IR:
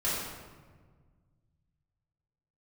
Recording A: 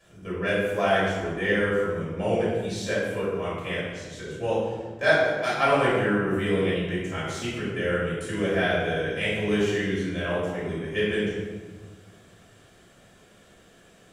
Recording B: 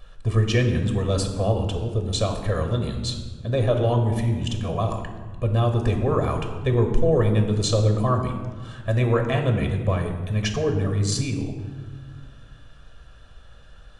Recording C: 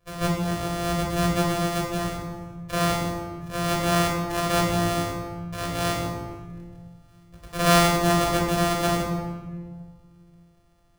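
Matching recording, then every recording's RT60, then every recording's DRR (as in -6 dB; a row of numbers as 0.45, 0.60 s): A; 1.5, 1.6, 1.5 s; -10.0, 4.5, -2.5 dB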